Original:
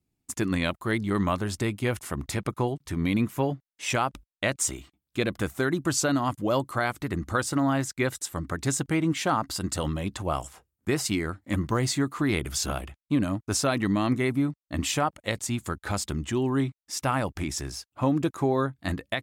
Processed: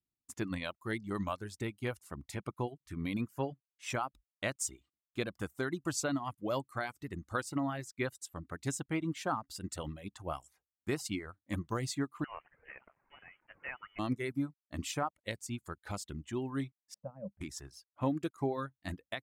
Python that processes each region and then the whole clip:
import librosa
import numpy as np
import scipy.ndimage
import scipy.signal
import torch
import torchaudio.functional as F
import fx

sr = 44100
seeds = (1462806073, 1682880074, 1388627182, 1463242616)

y = fx.chain(x, sr, fx.zero_step(step_db=-30.5),
    fx.highpass(hz=1200.0, slope=12),
    fx.freq_invert(carrier_hz=3200), at=(12.24, 13.99))
y = fx.chain(y, sr, fx.double_bandpass(hz=330.0, octaves=1.5),
    fx.tilt_eq(slope=-3.0), at=(16.94, 17.41))
y = fx.dereverb_blind(y, sr, rt60_s=0.87)
y = fx.upward_expand(y, sr, threshold_db=-41.0, expansion=1.5)
y = y * librosa.db_to_amplitude(-7.0)